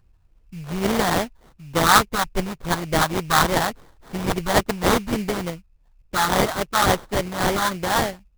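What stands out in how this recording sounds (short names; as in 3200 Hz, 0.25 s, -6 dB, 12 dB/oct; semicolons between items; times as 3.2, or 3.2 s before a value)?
phasing stages 4, 3.5 Hz, lowest notch 430–1700 Hz; aliases and images of a low sample rate 2600 Hz, jitter 20%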